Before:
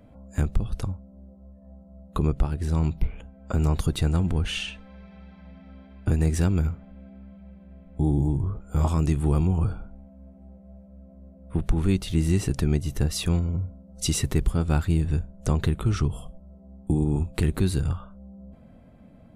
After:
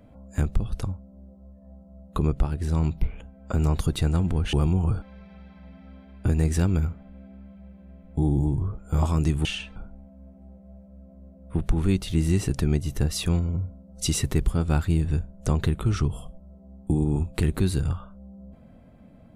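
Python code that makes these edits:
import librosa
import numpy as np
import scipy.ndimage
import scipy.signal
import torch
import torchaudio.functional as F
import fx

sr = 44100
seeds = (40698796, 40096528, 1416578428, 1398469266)

y = fx.edit(x, sr, fx.swap(start_s=4.53, length_s=0.31, other_s=9.27, other_length_s=0.49), tone=tone)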